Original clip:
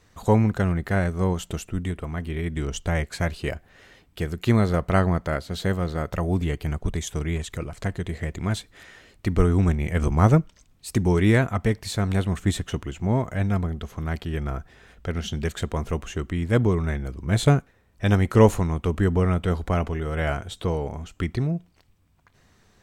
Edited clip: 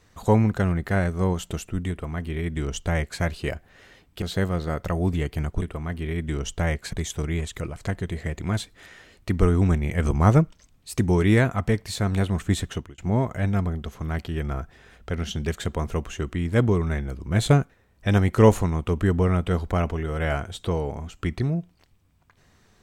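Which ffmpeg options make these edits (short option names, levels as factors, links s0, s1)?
-filter_complex "[0:a]asplit=5[s0][s1][s2][s3][s4];[s0]atrim=end=4.222[s5];[s1]atrim=start=5.498:end=6.902[s6];[s2]atrim=start=1.898:end=3.212[s7];[s3]atrim=start=6.898:end=12.95,asetpts=PTS-STARTPTS,afade=t=out:st=5.782:d=0.27[s8];[s4]atrim=start=12.95,asetpts=PTS-STARTPTS,afade=t=in:d=0.004:c=hsin[s9];[s5][s6]acrossfade=d=0.004:c1=hsin:c2=hsin[s10];[s10][s7]acrossfade=d=0.004:c1=hsin:c2=hsin[s11];[s8][s9]concat=n=2:v=0:a=1[s12];[s11][s12]acrossfade=d=0.004:c1=hsin:c2=hsin"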